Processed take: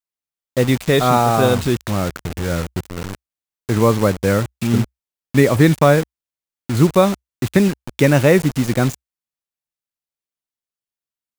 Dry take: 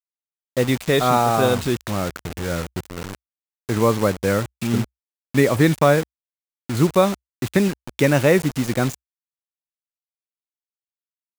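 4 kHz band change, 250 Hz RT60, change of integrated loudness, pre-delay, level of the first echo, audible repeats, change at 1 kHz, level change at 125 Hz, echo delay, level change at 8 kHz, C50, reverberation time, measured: +2.0 dB, no reverb audible, +3.0 dB, no reverb audible, no echo audible, no echo audible, +2.0 dB, +5.0 dB, no echo audible, +2.0 dB, no reverb audible, no reverb audible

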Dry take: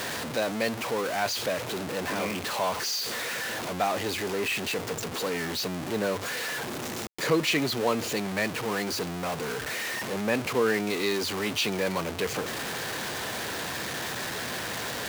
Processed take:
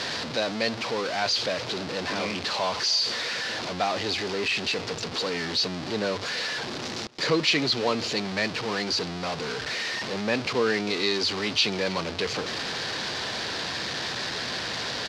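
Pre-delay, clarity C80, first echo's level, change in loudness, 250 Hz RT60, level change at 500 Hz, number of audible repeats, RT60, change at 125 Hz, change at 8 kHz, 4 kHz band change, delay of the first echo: no reverb audible, no reverb audible, −22.0 dB, +2.5 dB, no reverb audible, 0.0 dB, 1, no reverb audible, 0.0 dB, −2.0 dB, +6.5 dB, 298 ms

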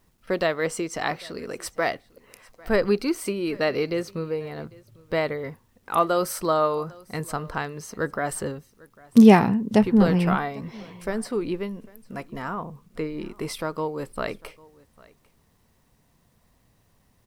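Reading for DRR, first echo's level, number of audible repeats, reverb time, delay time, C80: no reverb audible, −24.0 dB, 1, no reverb audible, 799 ms, no reverb audible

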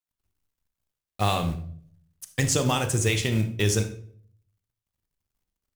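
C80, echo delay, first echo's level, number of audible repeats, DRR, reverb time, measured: 15.0 dB, no echo audible, no echo audible, no echo audible, 7.0 dB, 0.55 s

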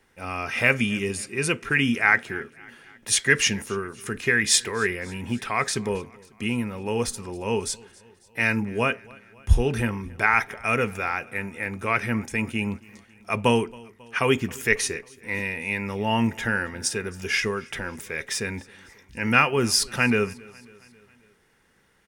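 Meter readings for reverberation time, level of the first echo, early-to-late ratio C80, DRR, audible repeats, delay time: no reverb audible, −24.0 dB, no reverb audible, no reverb audible, 3, 272 ms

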